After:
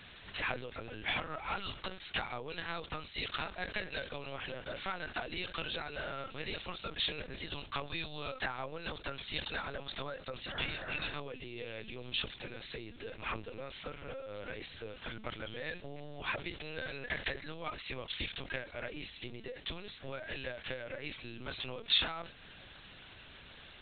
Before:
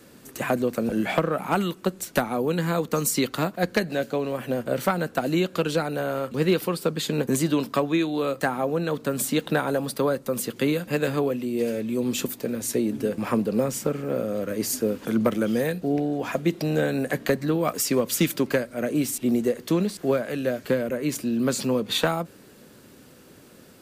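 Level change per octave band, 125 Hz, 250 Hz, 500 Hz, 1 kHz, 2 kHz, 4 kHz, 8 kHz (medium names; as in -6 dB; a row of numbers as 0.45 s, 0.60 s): -18.0 dB, -24.5 dB, -19.5 dB, -12.5 dB, -6.5 dB, -3.5 dB, under -40 dB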